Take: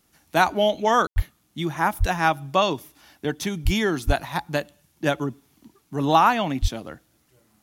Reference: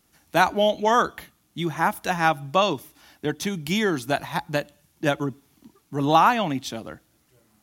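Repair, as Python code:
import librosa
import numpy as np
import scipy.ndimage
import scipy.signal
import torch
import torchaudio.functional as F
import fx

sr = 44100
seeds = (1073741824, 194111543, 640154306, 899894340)

y = fx.fix_deplosive(x, sr, at_s=(1.15, 1.99, 3.64, 4.06, 6.61))
y = fx.fix_ambience(y, sr, seeds[0], print_start_s=7.02, print_end_s=7.52, start_s=1.07, end_s=1.16)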